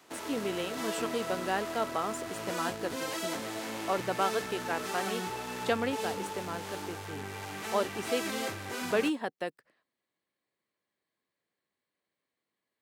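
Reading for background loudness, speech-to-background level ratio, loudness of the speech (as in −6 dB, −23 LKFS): −37.0 LKFS, 2.0 dB, −35.0 LKFS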